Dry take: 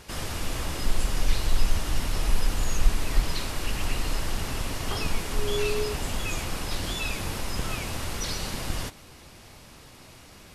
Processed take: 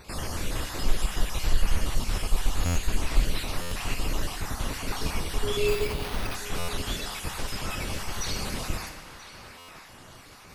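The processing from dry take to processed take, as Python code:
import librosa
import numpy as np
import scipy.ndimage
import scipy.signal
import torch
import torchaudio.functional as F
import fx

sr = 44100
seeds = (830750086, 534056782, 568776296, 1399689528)

y = fx.spec_dropout(x, sr, seeds[0], share_pct=32)
y = fx.echo_banded(y, sr, ms=983, feedback_pct=49, hz=1400.0, wet_db=-9.0)
y = fx.rev_schroeder(y, sr, rt60_s=1.3, comb_ms=30, drr_db=6.5)
y = fx.resample_bad(y, sr, factor=6, down='none', up='hold', at=(5.68, 6.35))
y = fx.buffer_glitch(y, sr, at_s=(2.65, 3.61, 6.58, 9.58), block=512, repeats=8)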